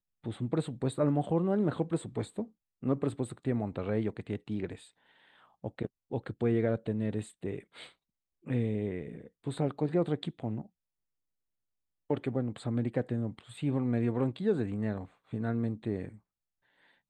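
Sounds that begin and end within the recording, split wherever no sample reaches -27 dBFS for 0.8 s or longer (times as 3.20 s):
5.64–7.54 s
8.50–10.58 s
12.11–16.05 s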